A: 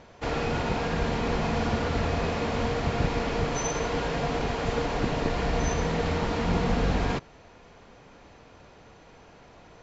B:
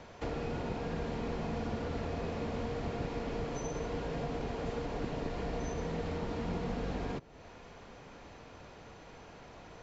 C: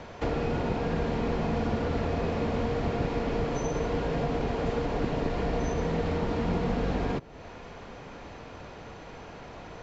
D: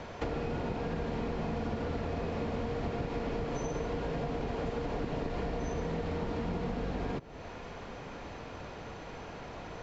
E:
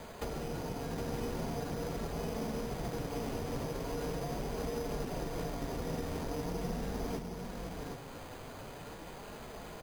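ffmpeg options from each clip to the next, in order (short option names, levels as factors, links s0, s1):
-filter_complex "[0:a]acrossover=split=210|620[s0][s1][s2];[s0]acompressor=threshold=0.01:ratio=4[s3];[s1]acompressor=threshold=0.0112:ratio=4[s4];[s2]acompressor=threshold=0.00398:ratio=4[s5];[s3][s4][s5]amix=inputs=3:normalize=0"
-af "highshelf=f=6600:g=-8.5,volume=2.51"
-af "acompressor=threshold=0.0282:ratio=6"
-filter_complex "[0:a]asplit=2[s0][s1];[s1]aecho=0:1:764:0.596[s2];[s0][s2]amix=inputs=2:normalize=0,flanger=delay=4.6:depth=3.3:regen=-45:speed=0.42:shape=sinusoidal,acrusher=samples=8:mix=1:aa=0.000001"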